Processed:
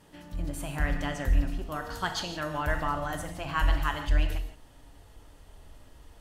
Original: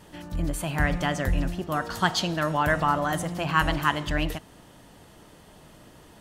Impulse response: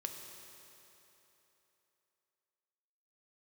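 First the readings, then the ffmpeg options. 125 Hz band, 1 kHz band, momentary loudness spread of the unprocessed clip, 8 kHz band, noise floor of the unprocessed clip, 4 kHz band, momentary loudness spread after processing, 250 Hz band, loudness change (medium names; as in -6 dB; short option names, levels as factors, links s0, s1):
-3.5 dB, -7.0 dB, 7 LU, -6.0 dB, -52 dBFS, -6.5 dB, 8 LU, -7.5 dB, -5.0 dB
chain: -filter_complex "[1:a]atrim=start_sample=2205,afade=t=out:st=0.18:d=0.01,atrim=end_sample=8379,asetrate=33075,aresample=44100[s0];[0:a][s0]afir=irnorm=-1:irlink=0,asubboost=boost=11.5:cutoff=54,volume=0.501"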